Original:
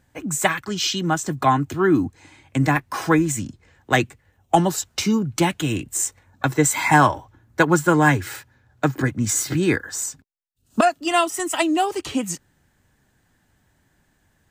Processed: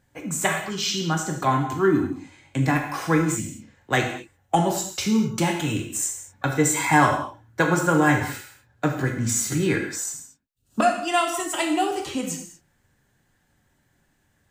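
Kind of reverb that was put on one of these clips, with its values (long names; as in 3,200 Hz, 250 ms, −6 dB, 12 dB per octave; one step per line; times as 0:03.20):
reverb whose tail is shaped and stops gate 260 ms falling, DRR 1.5 dB
level −4.5 dB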